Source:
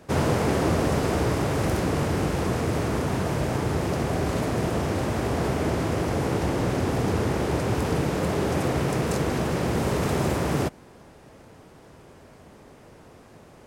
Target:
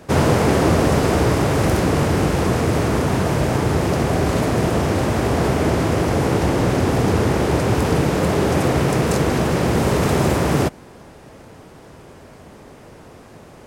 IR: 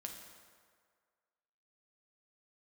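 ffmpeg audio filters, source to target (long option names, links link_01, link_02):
-af "volume=7dB"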